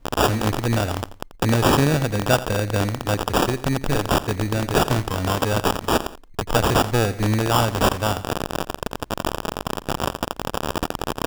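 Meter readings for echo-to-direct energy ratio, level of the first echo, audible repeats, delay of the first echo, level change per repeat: -15.5 dB, -16.0 dB, 2, 86 ms, -8.0 dB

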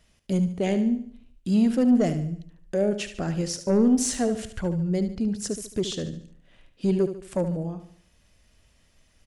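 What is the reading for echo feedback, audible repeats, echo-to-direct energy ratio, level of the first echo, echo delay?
43%, 4, -9.5 dB, -10.5 dB, 73 ms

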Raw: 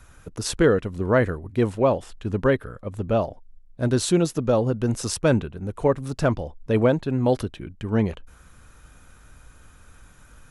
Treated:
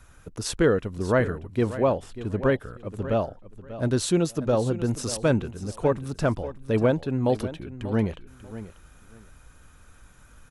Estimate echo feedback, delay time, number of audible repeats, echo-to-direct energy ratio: 20%, 0.59 s, 2, -14.0 dB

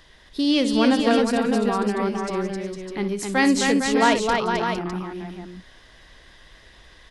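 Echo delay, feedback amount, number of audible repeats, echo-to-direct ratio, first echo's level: 59 ms, no steady repeat, 4, -1.0 dB, -12.5 dB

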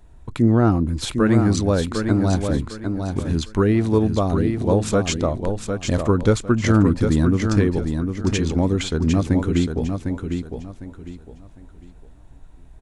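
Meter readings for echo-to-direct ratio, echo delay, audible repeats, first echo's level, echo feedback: -5.5 dB, 0.754 s, 3, -6.0 dB, 28%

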